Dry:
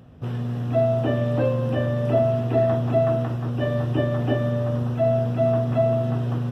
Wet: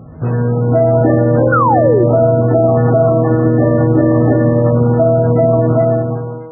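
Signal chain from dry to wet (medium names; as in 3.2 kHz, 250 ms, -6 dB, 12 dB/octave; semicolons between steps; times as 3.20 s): fade out at the end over 0.99 s; low-pass 2 kHz 12 dB/octave; 3.31–5.07 s: dynamic bell 240 Hz, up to +3 dB, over -37 dBFS, Q 1.2; feedback comb 160 Hz, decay 1.8 s, mix 90%; 1.52–2.04 s: painted sound fall 330–1500 Hz -38 dBFS; loudness maximiser +33 dB; trim -1.5 dB; MP3 8 kbps 16 kHz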